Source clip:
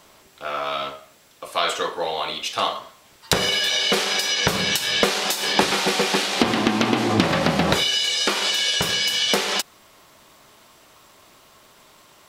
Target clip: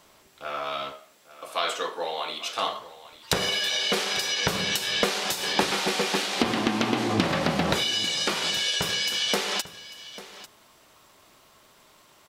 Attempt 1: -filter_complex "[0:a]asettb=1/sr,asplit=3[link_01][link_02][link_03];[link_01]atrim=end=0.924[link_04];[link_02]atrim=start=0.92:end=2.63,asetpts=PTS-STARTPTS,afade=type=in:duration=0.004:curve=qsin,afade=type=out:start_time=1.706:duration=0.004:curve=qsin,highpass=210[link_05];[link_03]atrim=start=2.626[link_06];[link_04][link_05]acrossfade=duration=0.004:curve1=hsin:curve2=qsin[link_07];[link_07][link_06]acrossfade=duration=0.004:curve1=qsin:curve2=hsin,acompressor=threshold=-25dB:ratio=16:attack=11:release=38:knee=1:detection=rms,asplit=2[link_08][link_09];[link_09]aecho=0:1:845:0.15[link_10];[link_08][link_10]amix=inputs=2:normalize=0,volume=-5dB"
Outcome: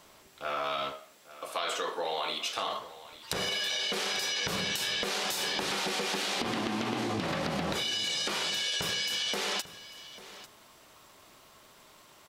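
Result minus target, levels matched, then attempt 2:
downward compressor: peak gain reduction +14.5 dB
-filter_complex "[0:a]asettb=1/sr,asplit=3[link_01][link_02][link_03];[link_01]atrim=end=0.924[link_04];[link_02]atrim=start=0.92:end=2.63,asetpts=PTS-STARTPTS,afade=type=in:duration=0.004:curve=qsin,afade=type=out:start_time=1.706:duration=0.004:curve=qsin,highpass=210[link_05];[link_03]atrim=start=2.626[link_06];[link_04][link_05]acrossfade=duration=0.004:curve1=hsin:curve2=qsin[link_07];[link_07][link_06]acrossfade=duration=0.004:curve1=qsin:curve2=hsin,asplit=2[link_08][link_09];[link_09]aecho=0:1:845:0.15[link_10];[link_08][link_10]amix=inputs=2:normalize=0,volume=-5dB"

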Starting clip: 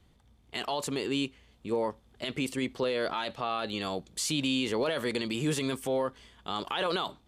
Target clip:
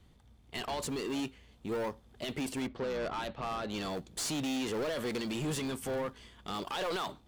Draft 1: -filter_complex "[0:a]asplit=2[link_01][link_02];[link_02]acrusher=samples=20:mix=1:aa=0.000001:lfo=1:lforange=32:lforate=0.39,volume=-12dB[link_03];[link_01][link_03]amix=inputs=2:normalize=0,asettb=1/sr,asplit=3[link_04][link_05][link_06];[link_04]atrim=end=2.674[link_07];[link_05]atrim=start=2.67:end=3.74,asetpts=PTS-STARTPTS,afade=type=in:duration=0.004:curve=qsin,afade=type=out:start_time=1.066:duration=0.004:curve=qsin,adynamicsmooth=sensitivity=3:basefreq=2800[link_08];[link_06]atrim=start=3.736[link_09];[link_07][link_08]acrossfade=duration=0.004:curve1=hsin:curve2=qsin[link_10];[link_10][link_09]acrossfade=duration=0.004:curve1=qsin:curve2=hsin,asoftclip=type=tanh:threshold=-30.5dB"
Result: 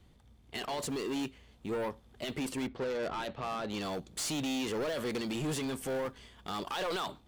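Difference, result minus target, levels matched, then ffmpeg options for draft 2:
sample-and-hold swept by an LFO: distortion −6 dB
-filter_complex "[0:a]asplit=2[link_01][link_02];[link_02]acrusher=samples=40:mix=1:aa=0.000001:lfo=1:lforange=64:lforate=0.39,volume=-12dB[link_03];[link_01][link_03]amix=inputs=2:normalize=0,asettb=1/sr,asplit=3[link_04][link_05][link_06];[link_04]atrim=end=2.674[link_07];[link_05]atrim=start=2.67:end=3.74,asetpts=PTS-STARTPTS,afade=type=in:duration=0.004:curve=qsin,afade=type=out:start_time=1.066:duration=0.004:curve=qsin,adynamicsmooth=sensitivity=3:basefreq=2800[link_08];[link_06]atrim=start=3.736[link_09];[link_07][link_08]acrossfade=duration=0.004:curve1=hsin:curve2=qsin[link_10];[link_10][link_09]acrossfade=duration=0.004:curve1=qsin:curve2=hsin,asoftclip=type=tanh:threshold=-30.5dB"

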